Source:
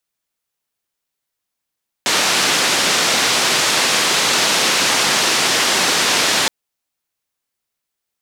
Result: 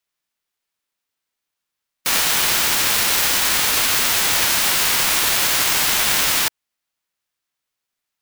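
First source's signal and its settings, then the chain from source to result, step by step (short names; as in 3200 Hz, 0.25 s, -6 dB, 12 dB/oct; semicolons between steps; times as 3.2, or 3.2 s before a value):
noise band 190–5700 Hz, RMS -16 dBFS 4.42 s
spectral whitening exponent 0.1; HPF 1000 Hz 12 dB/oct; clock jitter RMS 0.03 ms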